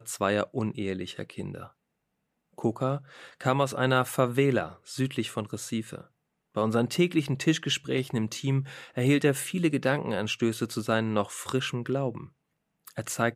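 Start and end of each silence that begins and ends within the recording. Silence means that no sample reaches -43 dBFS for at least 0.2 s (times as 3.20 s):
1.67–2.58 s
6.01–6.56 s
12.26–12.87 s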